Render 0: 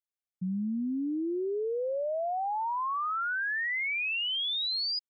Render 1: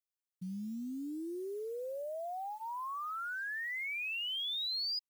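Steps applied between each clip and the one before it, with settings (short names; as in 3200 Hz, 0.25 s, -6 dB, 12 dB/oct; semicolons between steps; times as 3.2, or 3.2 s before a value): short-mantissa float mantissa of 4-bit; high shelf 3900 Hz +7.5 dB; notch 870 Hz, Q 20; gain -9 dB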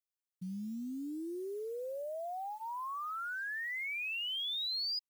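nothing audible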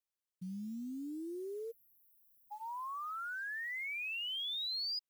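spectral delete 1.71–2.51, 250–11000 Hz; gain -2 dB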